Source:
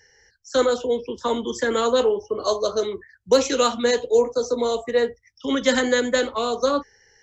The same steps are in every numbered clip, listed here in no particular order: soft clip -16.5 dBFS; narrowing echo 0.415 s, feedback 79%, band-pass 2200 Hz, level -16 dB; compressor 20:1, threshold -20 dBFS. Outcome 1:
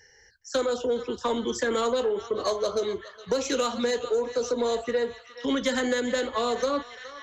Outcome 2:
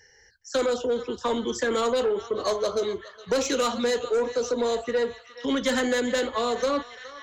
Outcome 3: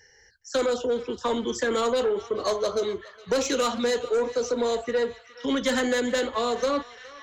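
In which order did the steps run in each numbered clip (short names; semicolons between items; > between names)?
narrowing echo > compressor > soft clip; narrowing echo > soft clip > compressor; soft clip > narrowing echo > compressor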